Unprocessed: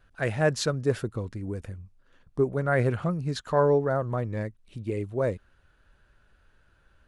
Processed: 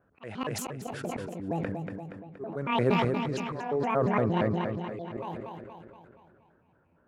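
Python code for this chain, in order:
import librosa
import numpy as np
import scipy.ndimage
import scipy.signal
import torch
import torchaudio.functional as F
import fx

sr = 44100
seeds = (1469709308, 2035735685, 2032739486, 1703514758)

y = fx.pitch_trill(x, sr, semitones=9.0, every_ms=116)
y = scipy.signal.sosfilt(scipy.signal.butter(2, 170.0, 'highpass', fs=sr, output='sos'), y)
y = fx.env_lowpass(y, sr, base_hz=940.0, full_db=-23.5)
y = fx.high_shelf(y, sr, hz=2900.0, db=-8.0)
y = fx.rider(y, sr, range_db=3, speed_s=0.5)
y = fx.auto_swell(y, sr, attack_ms=480.0)
y = fx.echo_feedback(y, sr, ms=236, feedback_pct=54, wet_db=-8.0)
y = fx.sustainer(y, sr, db_per_s=23.0)
y = y * librosa.db_to_amplitude(2.5)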